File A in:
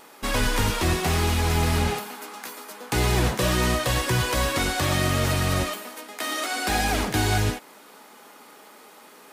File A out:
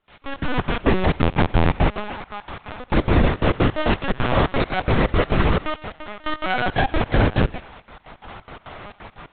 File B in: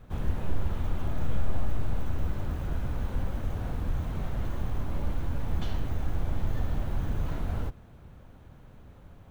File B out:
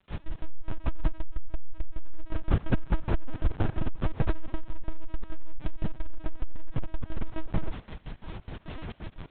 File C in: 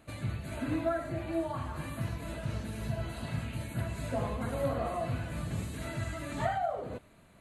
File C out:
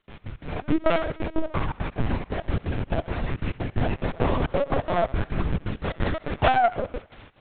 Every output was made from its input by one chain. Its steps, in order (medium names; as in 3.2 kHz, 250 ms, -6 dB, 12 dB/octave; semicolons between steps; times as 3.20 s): tracing distortion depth 0.44 ms; dynamic bell 350 Hz, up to +5 dB, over -46 dBFS, Q 4.4; level rider gain up to 15 dB; crackle 270 per s -25 dBFS; trance gate ".x.x.xx.x.xxx" 175 bpm -24 dB; distance through air 95 m; on a send: thinning echo 77 ms, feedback 61%, high-pass 530 Hz, level -18 dB; on the sum: LPC vocoder at 8 kHz pitch kept; transformer saturation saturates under 47 Hz; trim -2.5 dB